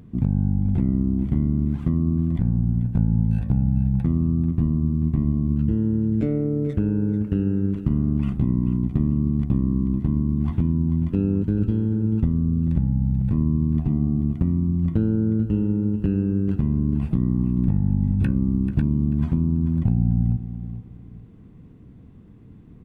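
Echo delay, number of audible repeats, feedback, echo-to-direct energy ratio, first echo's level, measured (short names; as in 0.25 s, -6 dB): 0.438 s, 3, 29%, -11.5 dB, -12.0 dB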